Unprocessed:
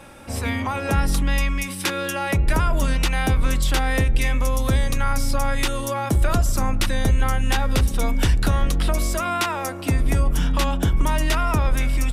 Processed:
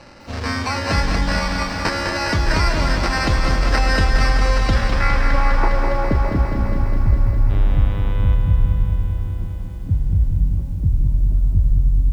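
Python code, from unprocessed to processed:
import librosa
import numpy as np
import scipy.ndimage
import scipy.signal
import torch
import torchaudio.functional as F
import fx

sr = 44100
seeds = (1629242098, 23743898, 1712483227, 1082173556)

y = fx.dynamic_eq(x, sr, hz=1900.0, q=1.1, threshold_db=-36.0, ratio=4.0, max_db=4)
y = fx.sample_hold(y, sr, seeds[0], rate_hz=3400.0, jitter_pct=0)
y = fx.filter_sweep_lowpass(y, sr, from_hz=5100.0, to_hz=120.0, start_s=4.64, end_s=6.94, q=1.5)
y = fx.dmg_buzz(y, sr, base_hz=100.0, harmonics=39, level_db=-30.0, tilt_db=-6, odd_only=False, at=(7.49, 8.34), fade=0.02)
y = fx.echo_banded(y, sr, ms=259, feedback_pct=77, hz=690.0, wet_db=-12)
y = fx.echo_crushed(y, sr, ms=204, feedback_pct=80, bits=9, wet_db=-6.5)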